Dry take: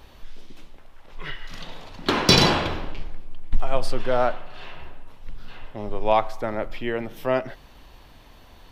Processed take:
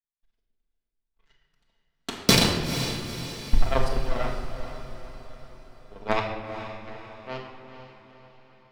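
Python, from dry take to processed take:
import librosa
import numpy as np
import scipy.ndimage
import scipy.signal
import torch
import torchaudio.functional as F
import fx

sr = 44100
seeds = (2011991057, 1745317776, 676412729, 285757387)

y = fx.power_curve(x, sr, exponent=3.0)
y = fx.echo_diffused(y, sr, ms=463, feedback_pct=51, wet_db=-10.0)
y = fx.room_shoebox(y, sr, seeds[0], volume_m3=1100.0, walls='mixed', distance_m=1.6)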